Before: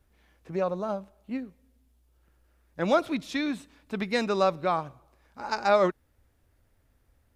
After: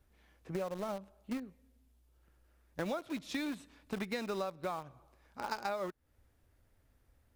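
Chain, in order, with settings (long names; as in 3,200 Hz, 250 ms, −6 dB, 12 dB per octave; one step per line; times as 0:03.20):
in parallel at −8 dB: bit reduction 5 bits
on the sum: downward compressor 10 to 1, threshold −31 dBFS, peak gain reduction 18 dB
level −3 dB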